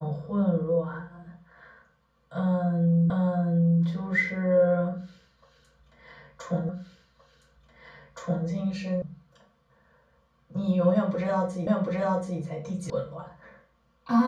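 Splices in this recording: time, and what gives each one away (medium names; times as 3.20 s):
3.10 s: repeat of the last 0.73 s
6.69 s: repeat of the last 1.77 s
9.02 s: sound stops dead
11.67 s: repeat of the last 0.73 s
12.90 s: sound stops dead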